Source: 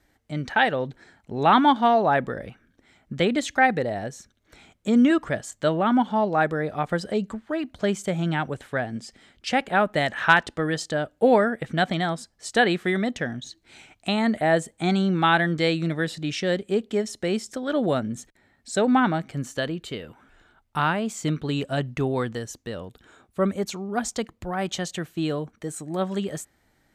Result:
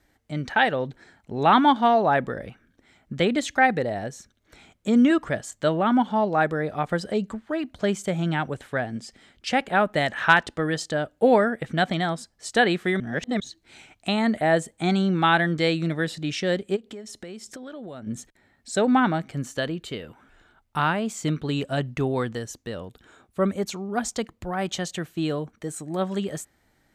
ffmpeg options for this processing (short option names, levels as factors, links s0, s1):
-filter_complex "[0:a]asplit=3[s0][s1][s2];[s0]afade=t=out:st=16.75:d=0.02[s3];[s1]acompressor=threshold=0.0178:ratio=8:attack=3.2:release=140:knee=1:detection=peak,afade=t=in:st=16.75:d=0.02,afade=t=out:st=18.06:d=0.02[s4];[s2]afade=t=in:st=18.06:d=0.02[s5];[s3][s4][s5]amix=inputs=3:normalize=0,asplit=3[s6][s7][s8];[s6]atrim=end=13.002[s9];[s7]atrim=start=12.998:end=13.402,asetpts=PTS-STARTPTS,areverse[s10];[s8]atrim=start=13.398[s11];[s9][s10]acrossfade=d=0.004:c1=hsin:c2=hsin[s12];[s12][s11]acrossfade=d=0.004:c1=hsin:c2=hsin"